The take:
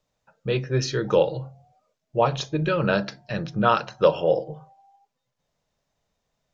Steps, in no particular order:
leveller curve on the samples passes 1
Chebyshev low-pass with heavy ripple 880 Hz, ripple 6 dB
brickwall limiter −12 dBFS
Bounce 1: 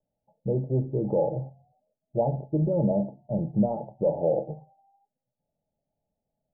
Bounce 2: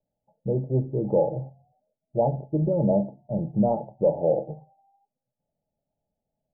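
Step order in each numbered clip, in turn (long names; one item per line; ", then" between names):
leveller curve on the samples, then brickwall limiter, then Chebyshev low-pass with heavy ripple
leveller curve on the samples, then Chebyshev low-pass with heavy ripple, then brickwall limiter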